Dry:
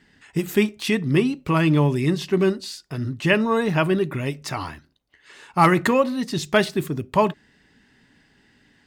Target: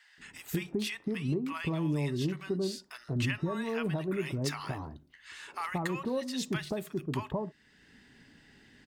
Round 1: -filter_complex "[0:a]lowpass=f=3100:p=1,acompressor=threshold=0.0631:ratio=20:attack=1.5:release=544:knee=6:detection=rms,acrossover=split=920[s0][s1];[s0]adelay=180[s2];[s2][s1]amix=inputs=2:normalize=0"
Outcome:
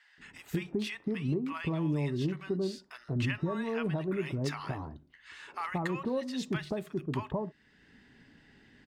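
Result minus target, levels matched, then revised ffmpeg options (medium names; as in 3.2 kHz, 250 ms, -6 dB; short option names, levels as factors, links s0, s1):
4 kHz band -3.5 dB
-filter_complex "[0:a]acompressor=threshold=0.0631:ratio=20:attack=1.5:release=544:knee=6:detection=rms,acrossover=split=920[s0][s1];[s0]adelay=180[s2];[s2][s1]amix=inputs=2:normalize=0"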